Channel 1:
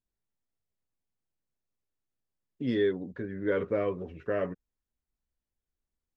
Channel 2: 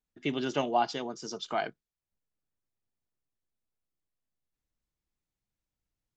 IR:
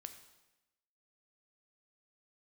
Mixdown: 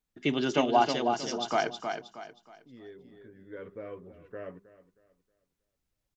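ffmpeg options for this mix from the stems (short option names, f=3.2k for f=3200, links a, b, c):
-filter_complex "[0:a]adelay=50,volume=-11dB,asplit=2[a][b];[b]volume=-17dB[c];[1:a]acontrast=39,volume=-2dB,asplit=3[d][e][f];[e]volume=-6.5dB[g];[f]apad=whole_len=273877[h];[a][h]sidechaincompress=threshold=-47dB:ratio=4:attack=21:release=1480[i];[c][g]amix=inputs=2:normalize=0,aecho=0:1:316|632|948|1264|1580:1|0.32|0.102|0.0328|0.0105[j];[i][d][j]amix=inputs=3:normalize=0,bandreject=f=200.4:t=h:w=4,bandreject=f=400.8:t=h:w=4"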